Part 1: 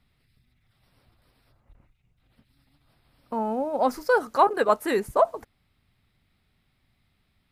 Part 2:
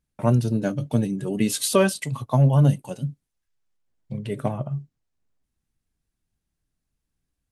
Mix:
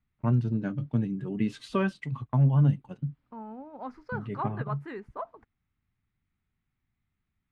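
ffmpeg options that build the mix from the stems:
-filter_complex "[0:a]volume=0.299[s0];[1:a]agate=range=0.0224:threshold=0.0224:ratio=16:detection=peak,volume=0.631[s1];[s0][s1]amix=inputs=2:normalize=0,lowpass=2000,equalizer=f=570:t=o:w=1:g=-10.5"

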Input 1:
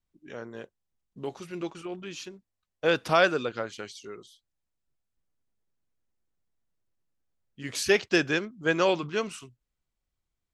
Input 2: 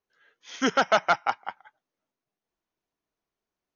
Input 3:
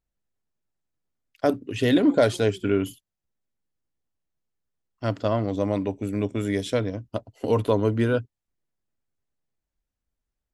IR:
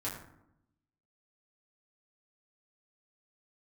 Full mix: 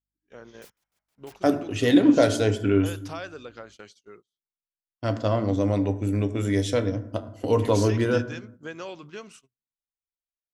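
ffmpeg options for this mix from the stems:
-filter_complex "[0:a]acompressor=threshold=0.0224:ratio=2.5,volume=0.562,asplit=2[s0][s1];[s1]volume=0.0708[s2];[1:a]asoftclip=type=hard:threshold=0.237,aeval=exprs='val(0)+0.00447*(sin(2*PI*50*n/s)+sin(2*PI*2*50*n/s)/2+sin(2*PI*3*50*n/s)/3+sin(2*PI*4*50*n/s)/4+sin(2*PI*5*50*n/s)/5)':c=same,aeval=exprs='(mod(29.9*val(0)+1,2)-1)/29.9':c=same,volume=0.15[s3];[2:a]volume=0.75,asplit=2[s4][s5];[s5]volume=0.422[s6];[3:a]atrim=start_sample=2205[s7];[s2][s6]amix=inputs=2:normalize=0[s8];[s8][s7]afir=irnorm=-1:irlink=0[s9];[s0][s3][s4][s9]amix=inputs=4:normalize=0,agate=range=0.0398:threshold=0.00447:ratio=16:detection=peak,adynamicequalizer=threshold=0.00178:dfrequency=6100:dqfactor=1.8:tfrequency=6100:tqfactor=1.8:attack=5:release=100:ratio=0.375:range=3:mode=boostabove:tftype=bell"

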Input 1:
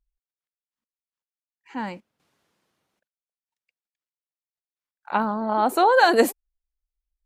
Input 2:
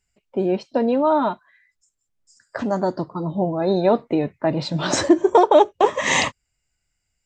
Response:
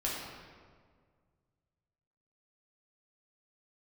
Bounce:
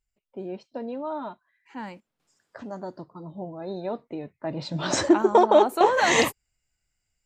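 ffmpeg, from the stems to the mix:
-filter_complex "[0:a]volume=0.501[s0];[1:a]volume=0.668,afade=t=in:st=4.34:d=0.64:silence=0.298538[s1];[s0][s1]amix=inputs=2:normalize=0"

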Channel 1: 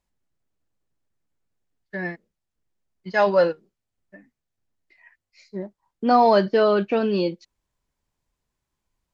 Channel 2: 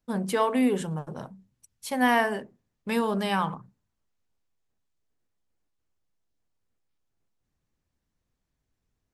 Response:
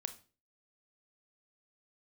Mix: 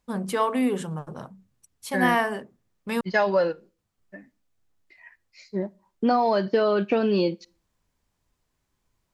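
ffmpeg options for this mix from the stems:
-filter_complex "[0:a]acompressor=threshold=0.0891:ratio=10,volume=1.19,asplit=2[s0][s1];[s1]volume=0.335[s2];[1:a]equalizer=f=1200:w=5.3:g=5.5,volume=0.944,asplit=3[s3][s4][s5];[s3]atrim=end=3.01,asetpts=PTS-STARTPTS,afade=t=out:st=3.006:d=0.004:c=hsin[s6];[s4]atrim=start=3.01:end=3.78,asetpts=PTS-STARTPTS,volume=0[s7];[s5]atrim=start=3.78,asetpts=PTS-STARTPTS,afade=t=in:d=0.004:c=hsin[s8];[s6][s7][s8]concat=n=3:v=0:a=1[s9];[2:a]atrim=start_sample=2205[s10];[s2][s10]afir=irnorm=-1:irlink=0[s11];[s0][s9][s11]amix=inputs=3:normalize=0"

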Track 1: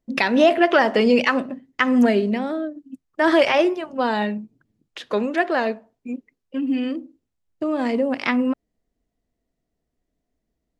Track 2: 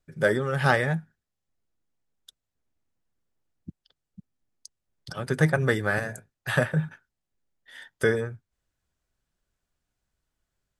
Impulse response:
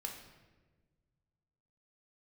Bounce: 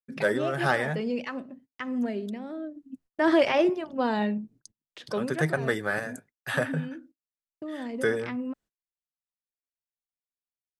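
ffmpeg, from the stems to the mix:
-filter_complex "[0:a]lowshelf=f=410:g=7,volume=0.422,afade=t=in:st=2.4:d=0.72:silence=0.316228,afade=t=out:st=4.75:d=0.74:silence=0.334965[s0];[1:a]highpass=170,acontrast=45,volume=0.398,asplit=2[s1][s2];[s2]apad=whole_len=475846[s3];[s0][s3]sidechaincompress=threshold=0.0447:ratio=8:attack=7.8:release=125[s4];[s4][s1]amix=inputs=2:normalize=0,agate=range=0.0355:threshold=0.00224:ratio=16:detection=peak"

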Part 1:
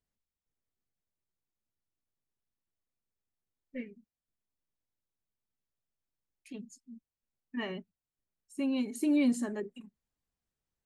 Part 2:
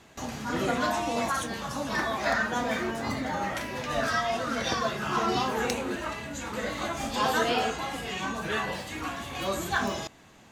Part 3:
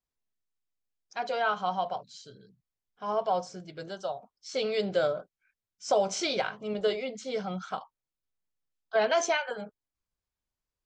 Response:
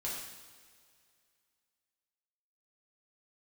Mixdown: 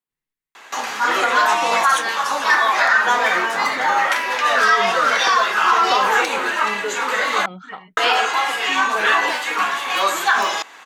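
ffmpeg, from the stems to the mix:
-filter_complex "[0:a]equalizer=f=2000:w=1.9:g=11.5,aecho=1:1:6.4:0.87,adelay=100,volume=0.251[s0];[1:a]highpass=660,equalizer=f=1100:w=0.34:g=9,alimiter=limit=0.211:level=0:latency=1:release=94,adelay=550,volume=1.33,asplit=3[s1][s2][s3];[s1]atrim=end=7.46,asetpts=PTS-STARTPTS,afade=t=out:st=7.456:d=0.004:c=hsin[s4];[s2]atrim=start=7.46:end=7.97,asetpts=PTS-STARTPTS,volume=0[s5];[s3]atrim=start=7.97,asetpts=PTS-STARTPTS,afade=t=in:d=0.004:c=hsin[s6];[s4][s5][s6]concat=n=3:v=0:a=1[s7];[2:a]highpass=200,equalizer=f=5500:w=2.1:g=-12.5,volume=0.562,asplit=2[s8][s9];[s9]apad=whole_len=483426[s10];[s0][s10]sidechaincompress=threshold=0.00562:ratio=4:attack=45:release=347[s11];[s11][s7][s8]amix=inputs=3:normalize=0,equalizer=f=640:w=3.5:g=-8,acontrast=72"

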